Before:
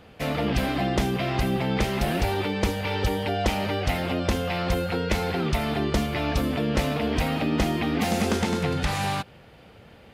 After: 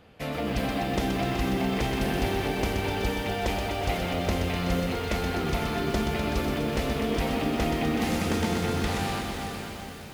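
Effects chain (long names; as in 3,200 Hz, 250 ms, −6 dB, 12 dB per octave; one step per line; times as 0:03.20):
on a send: feedback delay with all-pass diffusion 475 ms, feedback 49%, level −6.5 dB
on the sum: feedback echo at a low word length 125 ms, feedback 80%, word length 7 bits, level −6 dB
level −5 dB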